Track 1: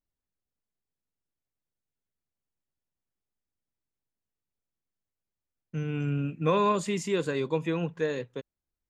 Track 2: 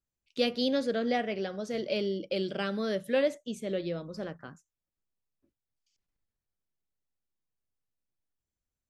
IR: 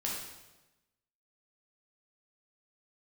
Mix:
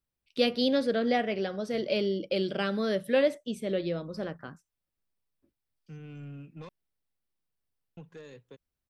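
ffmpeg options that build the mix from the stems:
-filter_complex "[0:a]asoftclip=type=tanh:threshold=0.0631,acrossover=split=170|3000[s0][s1][s2];[s1]acompressor=threshold=0.0158:ratio=2.5[s3];[s0][s3][s2]amix=inputs=3:normalize=0,adelay=150,volume=0.282,asplit=3[s4][s5][s6];[s4]atrim=end=6.69,asetpts=PTS-STARTPTS,afade=t=out:st=6.686:d=0.004:c=hsin[s7];[s5]atrim=start=6.69:end=7.97,asetpts=PTS-STARTPTS,volume=0[s8];[s6]atrim=start=7.97,asetpts=PTS-STARTPTS,afade=t=in:d=0.004:c=hsin[s9];[s7][s8][s9]concat=n=3:v=0:a=1[s10];[1:a]equalizer=f=6800:w=5.6:g=-13.5,volume=1.33[s11];[s10][s11]amix=inputs=2:normalize=0"

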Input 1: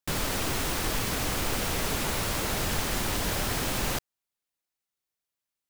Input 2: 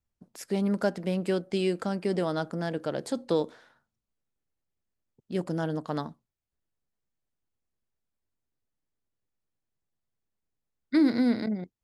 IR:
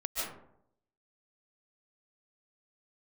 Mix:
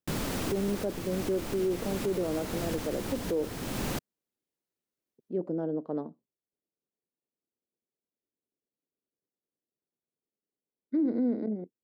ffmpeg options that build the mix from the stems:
-filter_complex "[0:a]volume=0.473[s0];[1:a]bandpass=f=450:t=q:w=1.6:csg=0,volume=0.668,asplit=2[s1][s2];[s2]apad=whole_len=251085[s3];[s0][s3]sidechaincompress=threshold=0.0141:ratio=4:attack=9:release=504[s4];[s4][s1]amix=inputs=2:normalize=0,equalizer=f=230:w=0.56:g=9.5,alimiter=limit=0.0841:level=0:latency=1:release=18"

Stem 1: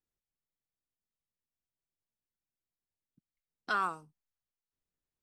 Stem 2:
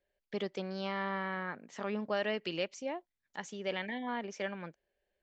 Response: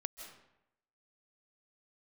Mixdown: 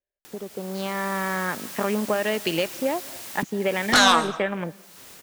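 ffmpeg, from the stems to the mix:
-filter_complex "[0:a]highpass=f=400:p=1,acompressor=mode=upward:threshold=0.0158:ratio=2.5,aeval=exprs='0.0944*sin(PI/2*3.98*val(0)/0.0944)':c=same,adelay=250,volume=0.447,asplit=2[s0][s1];[s1]volume=0.562[s2];[1:a]afwtdn=0.00501,acompressor=threshold=0.0141:ratio=6,volume=1.41,asplit=2[s3][s4];[s4]volume=0.282[s5];[2:a]atrim=start_sample=2205[s6];[s2][s5]amix=inputs=2:normalize=0[s7];[s7][s6]afir=irnorm=-1:irlink=0[s8];[s0][s3][s8]amix=inputs=3:normalize=0,dynaudnorm=f=240:g=7:m=3.98"

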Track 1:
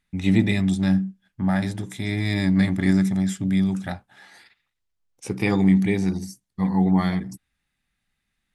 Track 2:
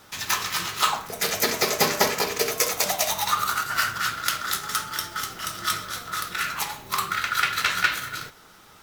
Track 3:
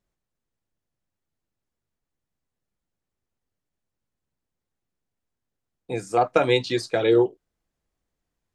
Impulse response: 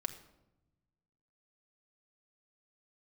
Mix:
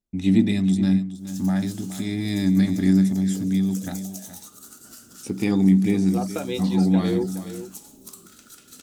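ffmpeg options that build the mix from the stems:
-filter_complex "[0:a]agate=range=0.0224:threshold=0.00708:ratio=3:detection=peak,volume=1,asplit=3[s0][s1][s2];[s1]volume=0.224[s3];[1:a]acompressor=threshold=0.0398:ratio=6,equalizer=f=250:t=o:w=1:g=8,equalizer=f=500:t=o:w=1:g=5,equalizer=f=1000:t=o:w=1:g=-8,equalizer=f=2000:t=o:w=1:g=-11,equalizer=f=4000:t=o:w=1:g=-6,equalizer=f=8000:t=o:w=1:g=9,adelay=1150,volume=0.376[s4];[2:a]volume=0.501,asplit=2[s5][s6];[s6]volume=0.266[s7];[s2]apad=whole_len=440033[s8];[s4][s8]sidechaincompress=threshold=0.0562:ratio=8:attack=10:release=197[s9];[s3][s7]amix=inputs=2:normalize=0,aecho=0:1:420:1[s10];[s0][s9][s5][s10]amix=inputs=4:normalize=0,equalizer=f=125:t=o:w=1:g=-8,equalizer=f=250:t=o:w=1:g=7,equalizer=f=500:t=o:w=1:g=-5,equalizer=f=1000:t=o:w=1:g=-6,equalizer=f=2000:t=o:w=1:g=-7"

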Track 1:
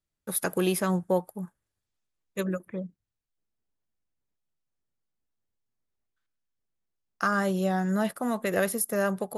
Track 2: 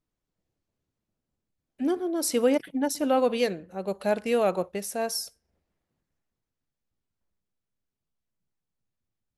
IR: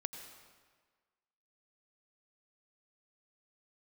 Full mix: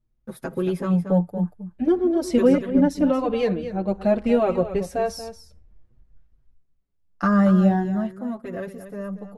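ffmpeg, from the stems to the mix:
-filter_complex "[0:a]acontrast=46,volume=0.447,afade=t=out:st=7.62:d=0.44:silence=0.298538,asplit=2[s0][s1];[s1]volume=0.299[s2];[1:a]asubboost=boost=2.5:cutoff=97,acompressor=threshold=0.0447:ratio=1.5,volume=1.12,asplit=3[s3][s4][s5];[s3]atrim=end=6.54,asetpts=PTS-STARTPTS,afade=t=out:st=6.536:d=0.004:c=hsin[s6];[s4]atrim=start=6.54:end=8.87,asetpts=PTS-STARTPTS,volume=0[s7];[s5]atrim=start=8.87,asetpts=PTS-STARTPTS,afade=t=in:d=0.004:c=hsin[s8];[s6][s7][s8]concat=n=3:v=0:a=1,asplit=2[s9][s10];[s10]volume=0.251[s11];[s2][s11]amix=inputs=2:normalize=0,aecho=0:1:232:1[s12];[s0][s9][s12]amix=inputs=3:normalize=0,aemphasis=mode=reproduction:type=riaa,dynaudnorm=f=490:g=5:m=2.24,asplit=2[s13][s14];[s14]adelay=6,afreqshift=0.51[s15];[s13][s15]amix=inputs=2:normalize=1"

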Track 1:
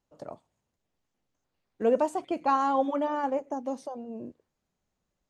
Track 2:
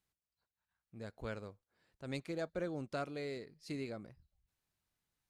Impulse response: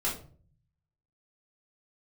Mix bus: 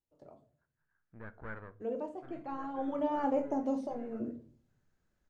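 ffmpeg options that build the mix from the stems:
-filter_complex "[0:a]acrossover=split=3000[s0][s1];[s1]acompressor=threshold=0.001:ratio=4:attack=1:release=60[s2];[s0][s2]amix=inputs=2:normalize=0,equalizer=f=1300:w=0.67:g=-7,volume=0.891,afade=t=in:st=2.75:d=0.53:silence=0.223872,asplit=3[s3][s4][s5];[s4]volume=0.376[s6];[1:a]aeval=exprs='(tanh(141*val(0)+0.65)-tanh(0.65))/141':c=same,lowpass=f=1600:t=q:w=4.2,adelay=200,volume=1.12,asplit=2[s7][s8];[s8]volume=0.112[s9];[s5]apad=whole_len=242519[s10];[s7][s10]sidechaincompress=threshold=0.00126:ratio=8:attack=16:release=288[s11];[2:a]atrim=start_sample=2205[s12];[s6][s9]amix=inputs=2:normalize=0[s13];[s13][s12]afir=irnorm=-1:irlink=0[s14];[s3][s11][s14]amix=inputs=3:normalize=0,highshelf=f=4900:g=-6.5"

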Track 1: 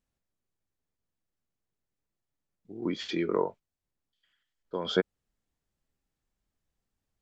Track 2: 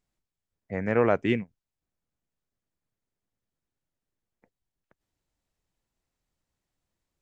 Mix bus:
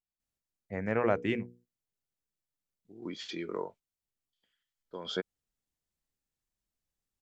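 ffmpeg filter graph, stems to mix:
-filter_complex "[0:a]highshelf=f=3000:g=8.5,adelay=200,volume=0.355[s0];[1:a]bandreject=f=60:t=h:w=6,bandreject=f=120:t=h:w=6,bandreject=f=180:t=h:w=6,bandreject=f=240:t=h:w=6,bandreject=f=300:t=h:w=6,bandreject=f=360:t=h:w=6,bandreject=f=420:t=h:w=6,bandreject=f=480:t=h:w=6,agate=range=0.178:threshold=0.00178:ratio=16:detection=peak,volume=0.596[s1];[s0][s1]amix=inputs=2:normalize=0"

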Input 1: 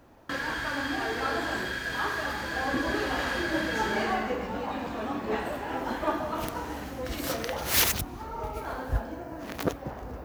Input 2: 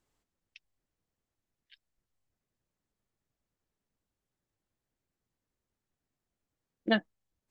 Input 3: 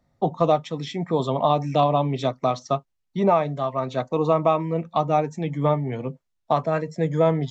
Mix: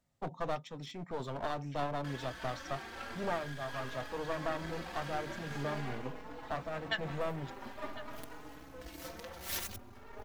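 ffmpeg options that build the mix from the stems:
-filter_complex "[0:a]aeval=exprs='max(val(0),0)':c=same,asplit=2[s0][s1];[s1]adelay=4.3,afreqshift=0.45[s2];[s0][s2]amix=inputs=2:normalize=1,adelay=1750,volume=0.422[s3];[1:a]highpass=1100,volume=0.708,asplit=2[s4][s5];[s5]volume=0.15[s6];[2:a]highshelf=f=6100:g=3.5,aeval=exprs='clip(val(0),-1,0.0335)':c=same,volume=0.224[s7];[s6]aecho=0:1:1052:1[s8];[s3][s4][s7][s8]amix=inputs=4:normalize=0"

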